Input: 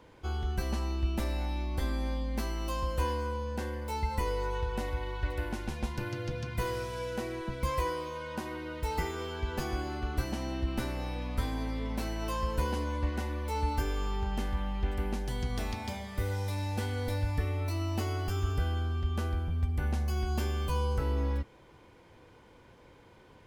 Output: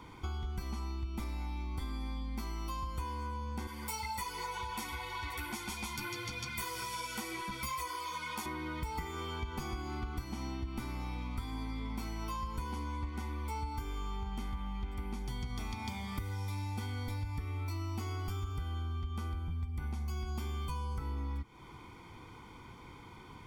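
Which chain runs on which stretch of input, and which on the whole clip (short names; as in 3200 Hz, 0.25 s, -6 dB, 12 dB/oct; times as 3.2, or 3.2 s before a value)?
3.67–8.46 tilt +3 dB/oct + ensemble effect
whole clip: low shelf 120 Hz -3.5 dB; comb 0.9 ms, depth 76%; compressor 6:1, threshold -40 dBFS; gain +4 dB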